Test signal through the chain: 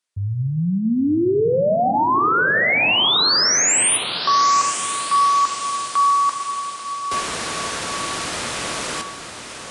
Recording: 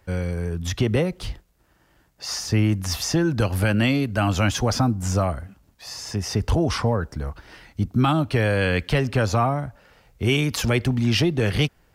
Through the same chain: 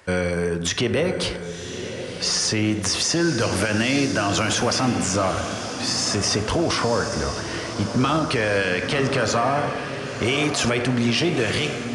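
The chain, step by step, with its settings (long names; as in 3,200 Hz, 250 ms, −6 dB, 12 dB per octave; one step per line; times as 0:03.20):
high-pass filter 430 Hz 6 dB per octave
downsampling to 22,050 Hz
notch filter 810 Hz, Q 12
dense smooth reverb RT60 1.1 s, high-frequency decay 0.35×, DRR 9.5 dB
in parallel at 0 dB: downward compressor, threshold −34 dBFS
on the sum: brickwall limiter −19 dBFS
on a send: feedback delay with all-pass diffusion 1,028 ms, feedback 51%, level −9 dB
on the sum: level +6.5 dB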